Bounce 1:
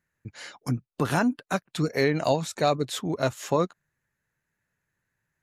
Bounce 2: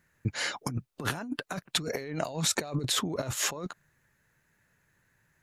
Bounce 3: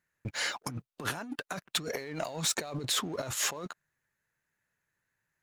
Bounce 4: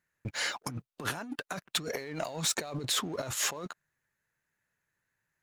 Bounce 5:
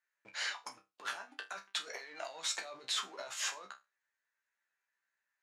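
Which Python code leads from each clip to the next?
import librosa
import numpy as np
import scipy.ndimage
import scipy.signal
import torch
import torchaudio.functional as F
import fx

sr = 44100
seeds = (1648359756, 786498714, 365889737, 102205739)

y1 = fx.over_compress(x, sr, threshold_db=-35.0, ratio=-1.0)
y1 = y1 * 10.0 ** (2.0 / 20.0)
y2 = fx.leveller(y1, sr, passes=2)
y2 = fx.low_shelf(y2, sr, hz=350.0, db=-7.0)
y2 = y2 * 10.0 ** (-7.0 / 20.0)
y3 = y2
y4 = fx.bandpass_edges(y3, sr, low_hz=780.0, high_hz=6700.0)
y4 = fx.resonator_bank(y4, sr, root=36, chord='fifth', decay_s=0.23)
y4 = y4 * 10.0 ** (4.5 / 20.0)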